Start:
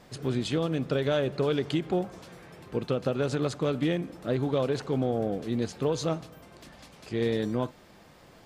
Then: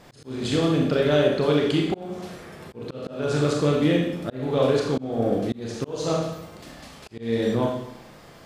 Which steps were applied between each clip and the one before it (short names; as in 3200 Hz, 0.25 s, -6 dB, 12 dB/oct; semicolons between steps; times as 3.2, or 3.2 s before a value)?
Schroeder reverb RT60 0.79 s, combs from 27 ms, DRR -1 dB; auto swell 0.315 s; gain +3.5 dB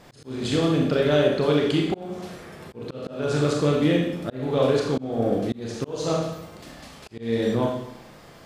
nothing audible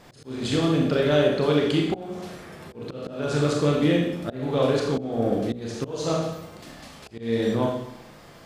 de-hum 61.3 Hz, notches 13